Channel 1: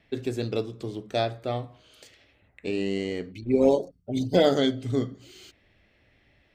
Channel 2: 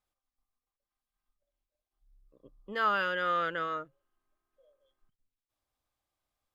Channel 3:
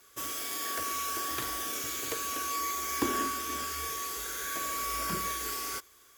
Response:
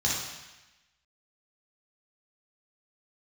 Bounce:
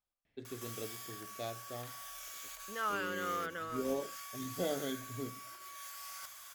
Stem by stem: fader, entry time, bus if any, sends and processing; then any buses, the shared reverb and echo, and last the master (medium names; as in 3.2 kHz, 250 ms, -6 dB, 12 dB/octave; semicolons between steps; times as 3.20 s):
-16.0 dB, 0.25 s, no send, none
-8.0 dB, 0.00 s, no send, none
-3.0 dB, 0.45 s, no send, compressor with a negative ratio -45 dBFS, ratio -1; steep high-pass 570 Hz 72 dB/octave; wavefolder -36 dBFS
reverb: none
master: none